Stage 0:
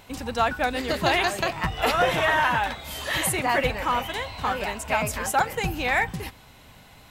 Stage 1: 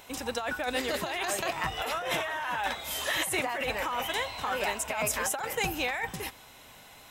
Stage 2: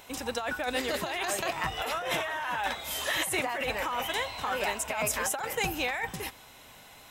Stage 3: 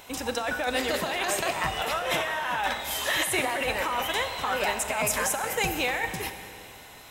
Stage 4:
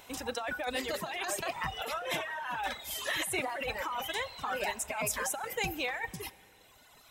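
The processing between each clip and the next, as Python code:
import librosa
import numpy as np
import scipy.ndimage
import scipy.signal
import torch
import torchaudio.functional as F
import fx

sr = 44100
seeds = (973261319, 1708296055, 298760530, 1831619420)

y1 = fx.bass_treble(x, sr, bass_db=-10, treble_db=4)
y1 = fx.notch(y1, sr, hz=4500.0, q=9.3)
y1 = fx.over_compress(y1, sr, threshold_db=-27.0, ratio=-1.0)
y1 = y1 * librosa.db_to_amplitude(-3.5)
y2 = y1
y3 = fx.rev_schroeder(y2, sr, rt60_s=2.5, comb_ms=30, drr_db=8.5)
y3 = y3 * librosa.db_to_amplitude(3.0)
y4 = fx.dereverb_blind(y3, sr, rt60_s=1.9)
y4 = y4 * librosa.db_to_amplitude(-5.5)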